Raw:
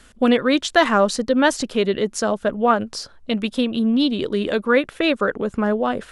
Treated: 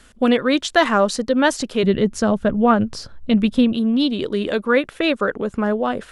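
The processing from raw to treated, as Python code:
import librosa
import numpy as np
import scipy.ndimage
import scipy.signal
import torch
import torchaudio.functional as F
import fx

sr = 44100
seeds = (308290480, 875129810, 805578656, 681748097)

y = fx.bass_treble(x, sr, bass_db=12, treble_db=-4, at=(1.83, 3.73))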